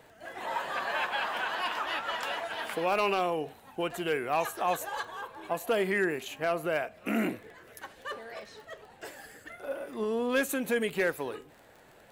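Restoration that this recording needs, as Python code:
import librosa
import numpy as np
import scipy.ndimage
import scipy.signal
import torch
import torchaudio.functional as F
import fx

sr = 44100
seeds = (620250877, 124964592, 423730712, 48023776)

y = fx.fix_declip(x, sr, threshold_db=-19.0)
y = fx.fix_declick_ar(y, sr, threshold=6.5)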